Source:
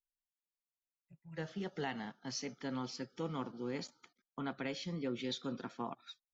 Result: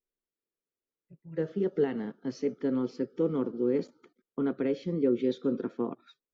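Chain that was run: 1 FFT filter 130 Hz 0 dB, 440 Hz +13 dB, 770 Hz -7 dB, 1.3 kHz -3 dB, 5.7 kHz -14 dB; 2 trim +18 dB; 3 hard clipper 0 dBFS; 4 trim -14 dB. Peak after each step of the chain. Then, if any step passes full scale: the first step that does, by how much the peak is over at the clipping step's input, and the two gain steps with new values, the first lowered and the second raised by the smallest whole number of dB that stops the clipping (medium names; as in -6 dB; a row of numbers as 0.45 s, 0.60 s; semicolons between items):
-19.5 dBFS, -1.5 dBFS, -1.5 dBFS, -15.5 dBFS; nothing clips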